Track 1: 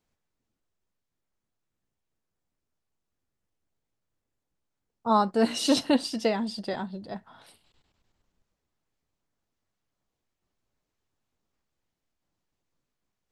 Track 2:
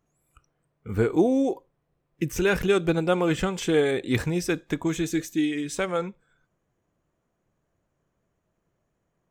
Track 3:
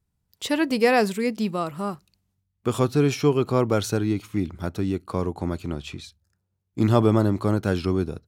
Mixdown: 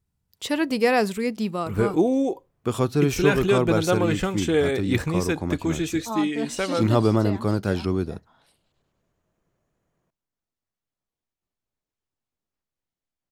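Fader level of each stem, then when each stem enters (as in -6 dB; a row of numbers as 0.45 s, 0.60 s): -8.0 dB, +0.5 dB, -1.0 dB; 1.00 s, 0.80 s, 0.00 s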